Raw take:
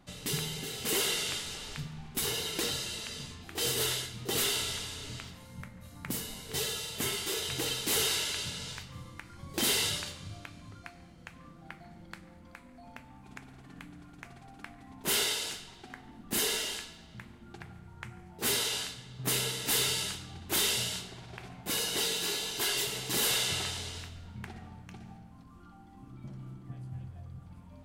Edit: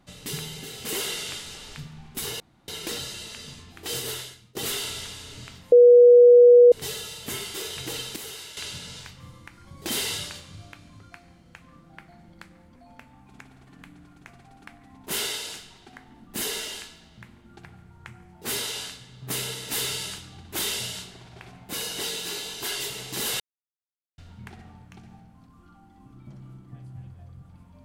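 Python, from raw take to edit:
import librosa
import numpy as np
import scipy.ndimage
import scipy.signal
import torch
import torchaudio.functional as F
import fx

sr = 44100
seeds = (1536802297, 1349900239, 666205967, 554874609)

y = fx.edit(x, sr, fx.insert_room_tone(at_s=2.4, length_s=0.28),
    fx.fade_out_to(start_s=3.69, length_s=0.58, floor_db=-22.0),
    fx.bleep(start_s=5.44, length_s=1.0, hz=485.0, db=-8.5),
    fx.clip_gain(start_s=7.88, length_s=0.41, db=-10.0),
    fx.cut(start_s=12.48, length_s=0.25),
    fx.silence(start_s=23.37, length_s=0.78), tone=tone)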